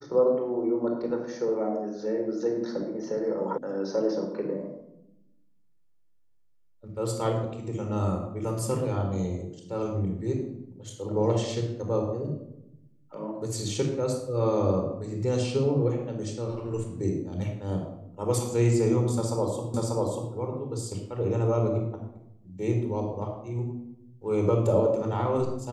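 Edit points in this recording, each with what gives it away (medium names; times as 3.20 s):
3.58 s: sound stops dead
19.74 s: repeat of the last 0.59 s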